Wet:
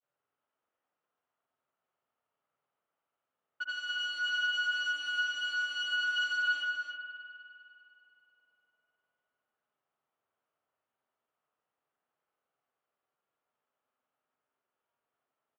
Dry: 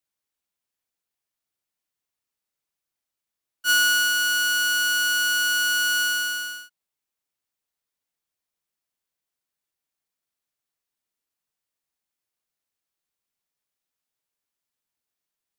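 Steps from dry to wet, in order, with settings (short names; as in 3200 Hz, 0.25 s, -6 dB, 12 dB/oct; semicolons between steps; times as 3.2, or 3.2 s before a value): low-pass opened by the level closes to 1100 Hz, open at -21 dBFS; high shelf 3700 Hz +4.5 dB; negative-ratio compressor -27 dBFS, ratio -0.5; grains 0.1 s, grains 20/s, pitch spread up and down by 0 st; soft clip -34.5 dBFS, distortion -5 dB; speaker cabinet 170–5300 Hz, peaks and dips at 190 Hz -10 dB, 320 Hz -6 dB, 660 Hz +3 dB, 1300 Hz +6 dB, 3000 Hz +6 dB, 5100 Hz -7 dB; tapped delay 79/282 ms -6.5/-7 dB; spring tank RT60 2.8 s, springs 49 ms, chirp 50 ms, DRR 7 dB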